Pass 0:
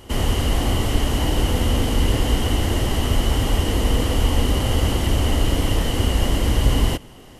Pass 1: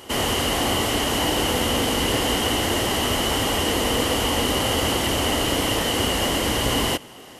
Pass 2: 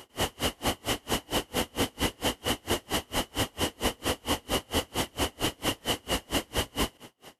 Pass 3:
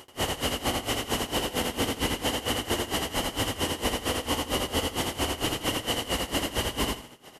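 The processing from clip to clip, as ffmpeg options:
ffmpeg -i in.wav -af "highpass=frequency=450:poles=1,acontrast=35" out.wav
ffmpeg -i in.wav -af "aeval=exprs='val(0)*pow(10,-37*(0.5-0.5*cos(2*PI*4.4*n/s))/20)':channel_layout=same,volume=-2dB" out.wav
ffmpeg -i in.wav -af "aecho=1:1:83|166|249:0.708|0.156|0.0343" out.wav

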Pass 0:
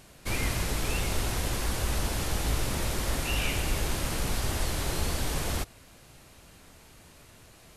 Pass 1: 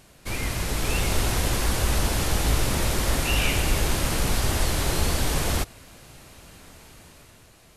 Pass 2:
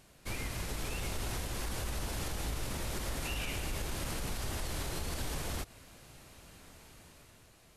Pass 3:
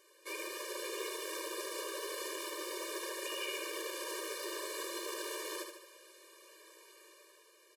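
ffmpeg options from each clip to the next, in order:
ffmpeg -i in.wav -af "dynaudnorm=framelen=140:gausssize=11:maxgain=6dB" out.wav
ffmpeg -i in.wav -af "alimiter=limit=-20dB:level=0:latency=1:release=114,volume=-7.5dB" out.wav
ffmpeg -i in.wav -filter_complex "[0:a]acrossover=split=220|6300[link_01][link_02][link_03];[link_01]aeval=exprs='(mod(56.2*val(0)+1,2)-1)/56.2':channel_layout=same[link_04];[link_04][link_02][link_03]amix=inputs=3:normalize=0,aecho=1:1:75|150|225|300|375|450:0.501|0.246|0.12|0.059|0.0289|0.0142,afftfilt=real='re*eq(mod(floor(b*sr/1024/310),2),1)':imag='im*eq(mod(floor(b*sr/1024/310),2),1)':win_size=1024:overlap=0.75,volume=1dB" out.wav

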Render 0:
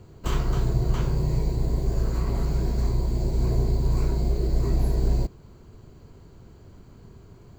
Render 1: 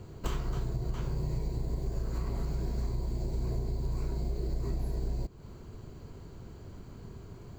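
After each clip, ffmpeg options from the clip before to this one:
ffmpeg -i in.wav -af "acompressor=threshold=-31dB:ratio=6,volume=1.5dB" out.wav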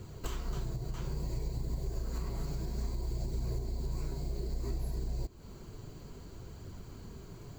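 ffmpeg -i in.wav -af "highshelf=frequency=3600:gain=8,alimiter=level_in=2dB:limit=-24dB:level=0:latency=1:release=356,volume=-2dB,flanger=delay=0.5:depth=6.8:regen=-47:speed=0.6:shape=triangular,volume=3dB" out.wav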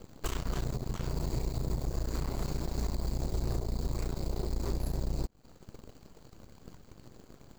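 ffmpeg -i in.wav -af "aeval=exprs='0.0562*(cos(1*acos(clip(val(0)/0.0562,-1,1)))-cos(1*PI/2))+0.00891*(cos(7*acos(clip(val(0)/0.0562,-1,1)))-cos(7*PI/2))+0.00631*(cos(8*acos(clip(val(0)/0.0562,-1,1)))-cos(8*PI/2))':channel_layout=same,volume=2dB" out.wav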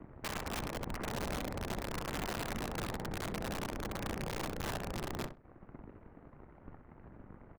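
ffmpeg -i in.wav -filter_complex "[0:a]highpass=frequency=190:width_type=q:width=0.5412,highpass=frequency=190:width_type=q:width=1.307,lowpass=frequency=2200:width_type=q:width=0.5176,lowpass=frequency=2200:width_type=q:width=0.7071,lowpass=frequency=2200:width_type=q:width=1.932,afreqshift=-180,aeval=exprs='(mod(59.6*val(0)+1,2)-1)/59.6':channel_layout=same,asplit=2[link_01][link_02];[link_02]adelay=64,lowpass=frequency=1500:poles=1,volume=-8dB,asplit=2[link_03][link_04];[link_04]adelay=64,lowpass=frequency=1500:poles=1,volume=0.26,asplit=2[link_05][link_06];[link_06]adelay=64,lowpass=frequency=1500:poles=1,volume=0.26[link_07];[link_01][link_03][link_05][link_07]amix=inputs=4:normalize=0,volume=3.5dB" out.wav

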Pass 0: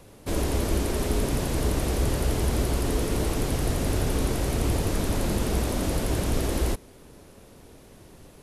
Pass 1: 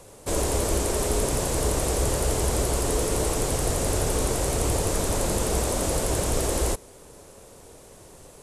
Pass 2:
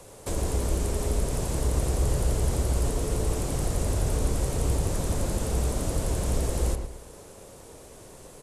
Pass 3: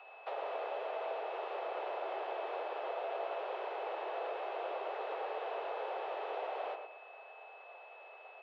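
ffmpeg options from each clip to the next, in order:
ffmpeg -i in.wav -af "equalizer=frequency=250:width_type=o:width=1:gain=-4,equalizer=frequency=500:width_type=o:width=1:gain=6,equalizer=frequency=1000:width_type=o:width=1:gain=4,equalizer=frequency=8000:width_type=o:width=1:gain=12,volume=-1dB" out.wav
ffmpeg -i in.wav -filter_complex "[0:a]acrossover=split=230[link_01][link_02];[link_02]acompressor=threshold=-33dB:ratio=5[link_03];[link_01][link_03]amix=inputs=2:normalize=0,asplit=2[link_04][link_05];[link_05]adelay=113,lowpass=frequency=2500:poles=1,volume=-6dB,asplit=2[link_06][link_07];[link_07]adelay=113,lowpass=frequency=2500:poles=1,volume=0.36,asplit=2[link_08][link_09];[link_09]adelay=113,lowpass=frequency=2500:poles=1,volume=0.36,asplit=2[link_10][link_11];[link_11]adelay=113,lowpass=frequency=2500:poles=1,volume=0.36[link_12];[link_04][link_06][link_08][link_10][link_12]amix=inputs=5:normalize=0" out.wav
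ffmpeg -i in.wav -af "highpass=frequency=200:width_type=q:width=0.5412,highpass=frequency=200:width_type=q:width=1.307,lowpass=frequency=3100:width_type=q:width=0.5176,lowpass=frequency=3100:width_type=q:width=0.7071,lowpass=frequency=3100:width_type=q:width=1.932,afreqshift=240,aeval=exprs='val(0)+0.00316*sin(2*PI*2600*n/s)':channel_layout=same,volume=-5.5dB" out.wav

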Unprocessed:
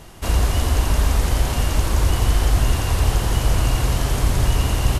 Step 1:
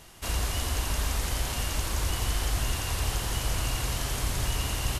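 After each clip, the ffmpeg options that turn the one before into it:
ffmpeg -i in.wav -af "tiltshelf=frequency=1200:gain=-4.5,volume=-7.5dB" out.wav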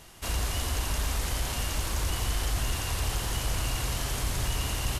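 ffmpeg -i in.wav -af "asoftclip=type=tanh:threshold=-17.5dB" out.wav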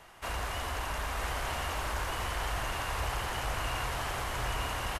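ffmpeg -i in.wav -filter_complex "[0:a]acrossover=split=530 2300:gain=0.251 1 0.2[link_01][link_02][link_03];[link_01][link_02][link_03]amix=inputs=3:normalize=0,aecho=1:1:947:0.596,volume=3.5dB" out.wav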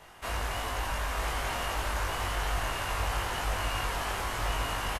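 ffmpeg -i in.wav -filter_complex "[0:a]asplit=2[link_01][link_02];[link_02]adelay=20,volume=-2dB[link_03];[link_01][link_03]amix=inputs=2:normalize=0" out.wav

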